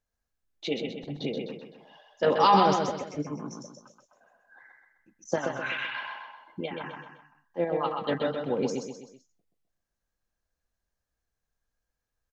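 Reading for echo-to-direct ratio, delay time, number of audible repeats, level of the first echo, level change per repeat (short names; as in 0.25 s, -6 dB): -3.5 dB, 0.128 s, 4, -4.5 dB, -7.0 dB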